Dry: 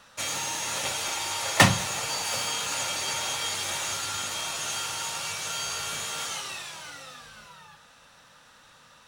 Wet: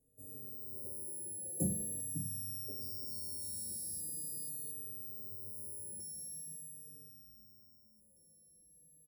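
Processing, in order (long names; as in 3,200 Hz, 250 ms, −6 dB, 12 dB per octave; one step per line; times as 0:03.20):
samples sorted by size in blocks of 8 samples
elliptic band-stop filter 420–8,300 Hz, stop band 50 dB
high-shelf EQ 4,800 Hz −6 dB
tuned comb filter 53 Hz, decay 1.8 s, harmonics all, mix 80%
auto-filter notch square 0.25 Hz 440–5,500 Hz
echo through a band-pass that steps 541 ms, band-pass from 190 Hz, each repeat 1.4 octaves, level −5 dB
0:02.50–0:04.71: delay with pitch and tempo change per echo 307 ms, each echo −2 semitones, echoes 3, each echo −6 dB
barber-pole flanger 4.2 ms −0.43 Hz
level +4 dB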